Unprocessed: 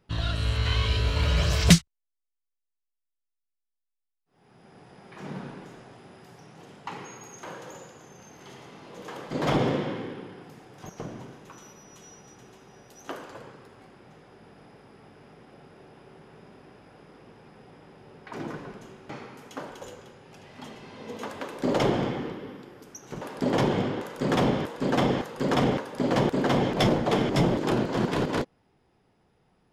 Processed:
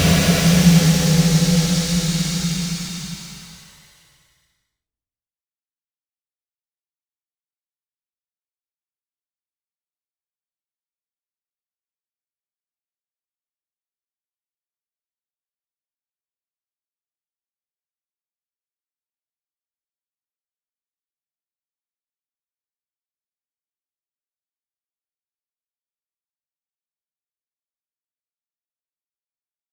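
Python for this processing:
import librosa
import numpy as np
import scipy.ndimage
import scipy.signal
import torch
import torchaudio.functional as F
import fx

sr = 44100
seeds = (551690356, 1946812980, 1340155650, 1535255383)

y = fx.high_shelf(x, sr, hz=11000.0, db=-11.0)
y = fx.quant_dither(y, sr, seeds[0], bits=10, dither='none')
y = fx.leveller(y, sr, passes=5)
y = fx.paulstretch(y, sr, seeds[1], factor=33.0, window_s=0.1, from_s=1.71)
y = F.gain(torch.from_numpy(y), -8.0).numpy()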